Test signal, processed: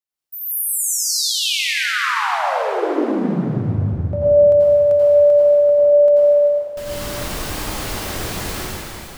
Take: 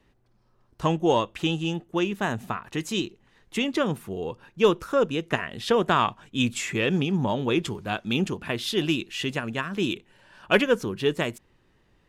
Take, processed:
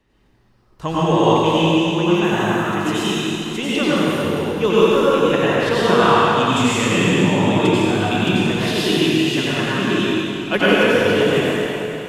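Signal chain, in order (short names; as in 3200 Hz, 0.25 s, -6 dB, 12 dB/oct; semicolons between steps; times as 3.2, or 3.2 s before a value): plate-style reverb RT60 3.3 s, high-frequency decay 0.9×, pre-delay 75 ms, DRR -10 dB; gain -1 dB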